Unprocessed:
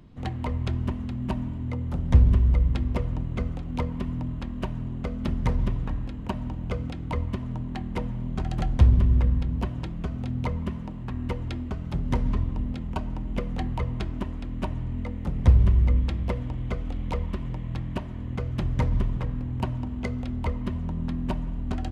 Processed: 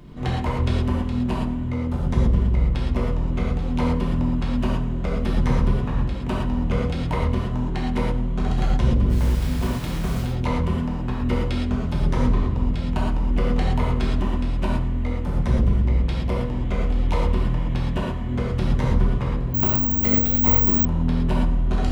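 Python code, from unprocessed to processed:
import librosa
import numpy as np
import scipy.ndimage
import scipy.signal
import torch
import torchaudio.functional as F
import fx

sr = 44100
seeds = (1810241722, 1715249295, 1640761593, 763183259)

p1 = fx.low_shelf(x, sr, hz=74.0, db=-2.5)
p2 = fx.rider(p1, sr, range_db=10, speed_s=2.0)
p3 = p1 + (p2 * 10.0 ** (3.0 / 20.0))
p4 = 10.0 ** (-14.0 / 20.0) * np.tanh(p3 / 10.0 ** (-14.0 / 20.0))
p5 = fx.quant_dither(p4, sr, seeds[0], bits=6, dither='none', at=(9.09, 10.21), fade=0.02)
p6 = p5 + fx.echo_single(p5, sr, ms=95, db=-17.5, dry=0)
p7 = fx.rev_gated(p6, sr, seeds[1], gate_ms=150, shape='flat', drr_db=-4.5)
p8 = fx.resample_bad(p7, sr, factor=2, down='none', up='zero_stuff', at=(19.54, 20.85))
y = p8 * 10.0 ** (-5.0 / 20.0)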